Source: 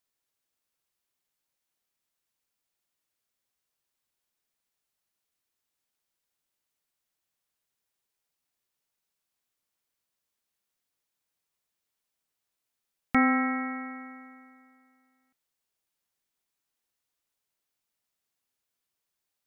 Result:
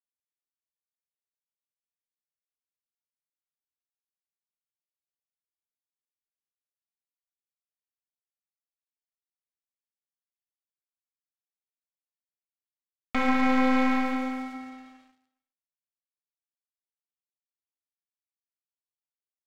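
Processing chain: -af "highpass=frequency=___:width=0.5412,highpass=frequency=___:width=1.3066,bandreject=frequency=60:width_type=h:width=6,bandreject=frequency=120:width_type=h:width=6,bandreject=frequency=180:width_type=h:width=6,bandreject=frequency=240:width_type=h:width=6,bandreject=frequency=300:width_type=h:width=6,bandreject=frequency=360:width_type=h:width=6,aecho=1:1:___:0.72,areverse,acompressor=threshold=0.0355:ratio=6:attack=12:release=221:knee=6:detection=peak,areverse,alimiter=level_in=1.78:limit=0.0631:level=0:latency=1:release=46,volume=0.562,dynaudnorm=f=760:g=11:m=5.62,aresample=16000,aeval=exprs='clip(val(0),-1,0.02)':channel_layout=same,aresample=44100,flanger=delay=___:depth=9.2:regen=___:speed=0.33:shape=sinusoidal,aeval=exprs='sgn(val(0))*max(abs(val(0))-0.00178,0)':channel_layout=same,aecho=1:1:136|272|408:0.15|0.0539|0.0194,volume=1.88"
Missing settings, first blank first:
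210, 210, 4, 6.1, -74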